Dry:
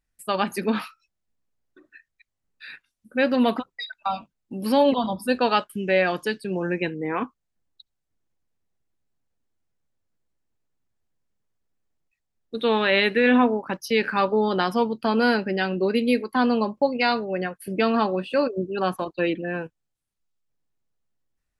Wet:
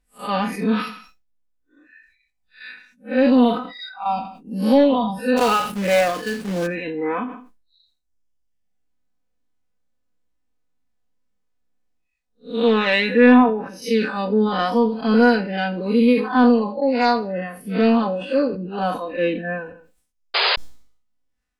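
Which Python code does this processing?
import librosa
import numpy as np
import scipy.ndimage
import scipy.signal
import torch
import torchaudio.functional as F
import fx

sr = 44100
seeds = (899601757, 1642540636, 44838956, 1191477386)

y = fx.spec_blur(x, sr, span_ms=137.0)
y = fx.graphic_eq(y, sr, hz=(125, 250, 1000, 2000, 8000), db=(-5, 3, -9, -5, 7), at=(13.68, 14.45), fade=0.02)
y = fx.dereverb_blind(y, sr, rt60_s=1.3)
y = 10.0 ** (-11.5 / 20.0) * np.tanh(y / 10.0 ** (-11.5 / 20.0))
y = y + 0.87 * np.pad(y, (int(4.0 * sr / 1000.0), 0))[:len(y)]
y = fx.quant_companded(y, sr, bits=4, at=(5.36, 6.66), fade=0.02)
y = fx.high_shelf(y, sr, hz=9800.0, db=-9.5)
y = fx.echo_feedback(y, sr, ms=83, feedback_pct=33, wet_db=-22)
y = fx.spec_paint(y, sr, seeds[0], shape='noise', start_s=20.34, length_s=0.22, low_hz=370.0, high_hz=5000.0, level_db=-24.0)
y = fx.sustainer(y, sr, db_per_s=95.0)
y = y * 10.0 ** (5.5 / 20.0)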